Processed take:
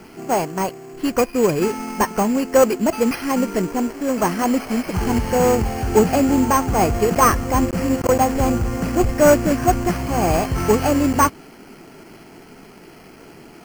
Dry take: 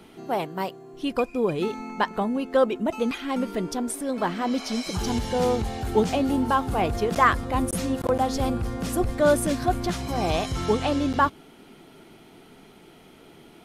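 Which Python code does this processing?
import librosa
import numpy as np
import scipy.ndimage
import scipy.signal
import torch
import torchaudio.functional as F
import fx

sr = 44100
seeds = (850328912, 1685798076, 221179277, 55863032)

y = fx.cvsd(x, sr, bps=16000)
y = np.repeat(scipy.signal.resample_poly(y, 1, 6), 6)[:len(y)]
y = F.gain(torch.from_numpy(y), 7.5).numpy()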